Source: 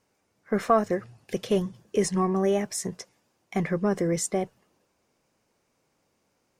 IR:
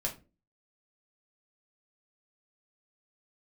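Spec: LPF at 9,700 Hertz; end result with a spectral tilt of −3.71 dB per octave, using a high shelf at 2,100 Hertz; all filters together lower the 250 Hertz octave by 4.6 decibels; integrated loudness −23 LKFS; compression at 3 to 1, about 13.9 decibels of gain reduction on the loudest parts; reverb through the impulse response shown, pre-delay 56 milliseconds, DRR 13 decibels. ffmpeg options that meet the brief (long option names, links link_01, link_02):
-filter_complex "[0:a]lowpass=9700,equalizer=frequency=250:width_type=o:gain=-7.5,highshelf=frequency=2100:gain=4,acompressor=threshold=-35dB:ratio=3,asplit=2[link_01][link_02];[1:a]atrim=start_sample=2205,adelay=56[link_03];[link_02][link_03]afir=irnorm=-1:irlink=0,volume=-16dB[link_04];[link_01][link_04]amix=inputs=2:normalize=0,volume=14.5dB"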